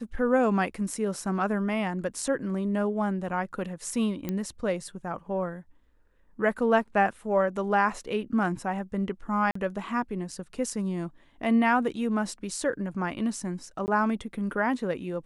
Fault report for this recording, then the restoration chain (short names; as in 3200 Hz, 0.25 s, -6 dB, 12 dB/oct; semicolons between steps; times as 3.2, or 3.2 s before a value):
4.29 pop -17 dBFS
9.51–9.55 gap 44 ms
13.86–13.88 gap 19 ms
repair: de-click; interpolate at 9.51, 44 ms; interpolate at 13.86, 19 ms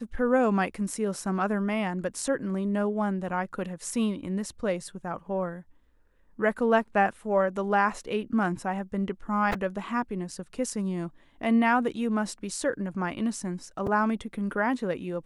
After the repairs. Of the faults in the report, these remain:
none